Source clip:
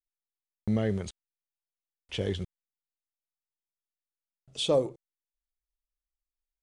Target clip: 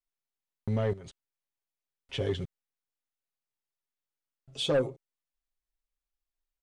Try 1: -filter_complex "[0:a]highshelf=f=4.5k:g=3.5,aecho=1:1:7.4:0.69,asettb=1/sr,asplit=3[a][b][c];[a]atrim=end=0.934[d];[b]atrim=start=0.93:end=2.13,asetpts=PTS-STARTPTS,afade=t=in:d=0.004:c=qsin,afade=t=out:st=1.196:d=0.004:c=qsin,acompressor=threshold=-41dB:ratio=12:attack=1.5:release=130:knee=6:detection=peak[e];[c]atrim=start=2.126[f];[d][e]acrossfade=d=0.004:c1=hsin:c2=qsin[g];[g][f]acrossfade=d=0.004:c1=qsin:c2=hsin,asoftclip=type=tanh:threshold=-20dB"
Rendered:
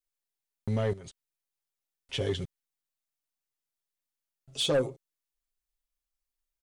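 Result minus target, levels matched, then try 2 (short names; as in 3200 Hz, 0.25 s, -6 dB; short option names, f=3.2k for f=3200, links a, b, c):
8000 Hz band +6.5 dB
-filter_complex "[0:a]highshelf=f=4.5k:g=-7,aecho=1:1:7.4:0.69,asettb=1/sr,asplit=3[a][b][c];[a]atrim=end=0.934[d];[b]atrim=start=0.93:end=2.13,asetpts=PTS-STARTPTS,afade=t=in:d=0.004:c=qsin,afade=t=out:st=1.196:d=0.004:c=qsin,acompressor=threshold=-41dB:ratio=12:attack=1.5:release=130:knee=6:detection=peak[e];[c]atrim=start=2.126[f];[d][e]acrossfade=d=0.004:c1=hsin:c2=qsin[g];[g][f]acrossfade=d=0.004:c1=qsin:c2=hsin,asoftclip=type=tanh:threshold=-20dB"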